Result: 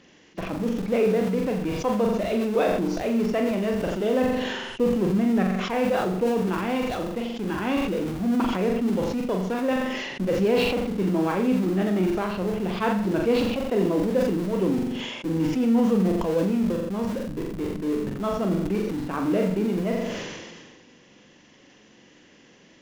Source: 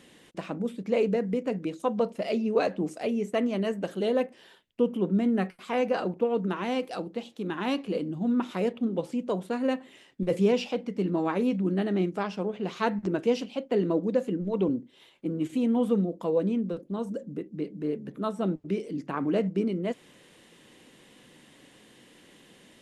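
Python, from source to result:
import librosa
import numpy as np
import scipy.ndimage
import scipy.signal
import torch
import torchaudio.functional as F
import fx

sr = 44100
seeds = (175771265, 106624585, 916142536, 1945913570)

p1 = fx.freq_compress(x, sr, knee_hz=2700.0, ratio=1.5)
p2 = fx.schmitt(p1, sr, flips_db=-34.0)
p3 = p1 + (p2 * 10.0 ** (-10.0 / 20.0))
p4 = fx.room_flutter(p3, sr, wall_m=7.4, rt60_s=0.49)
y = fx.sustainer(p4, sr, db_per_s=32.0)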